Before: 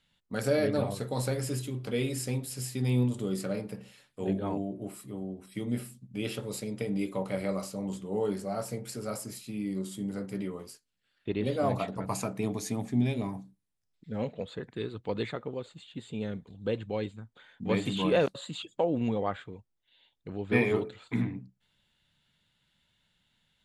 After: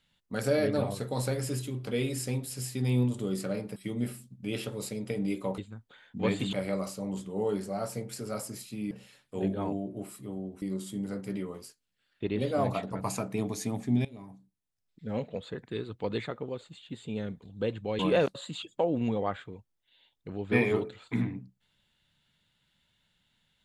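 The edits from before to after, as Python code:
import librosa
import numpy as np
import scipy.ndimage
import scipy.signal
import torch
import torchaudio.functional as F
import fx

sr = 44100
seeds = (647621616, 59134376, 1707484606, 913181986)

y = fx.edit(x, sr, fx.move(start_s=3.76, length_s=1.71, to_s=9.67),
    fx.fade_in_from(start_s=13.1, length_s=1.09, floor_db=-18.5),
    fx.move(start_s=17.04, length_s=0.95, to_s=7.29), tone=tone)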